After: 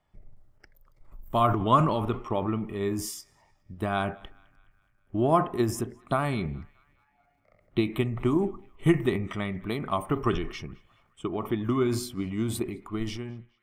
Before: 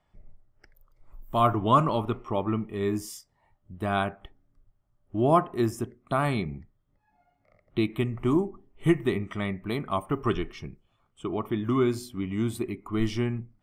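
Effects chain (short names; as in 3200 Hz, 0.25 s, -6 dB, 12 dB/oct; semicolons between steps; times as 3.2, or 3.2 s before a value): ending faded out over 1.04 s; transient shaper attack +5 dB, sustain +9 dB; narrowing echo 0.21 s, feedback 60%, band-pass 1900 Hz, level -23.5 dB; gain -3 dB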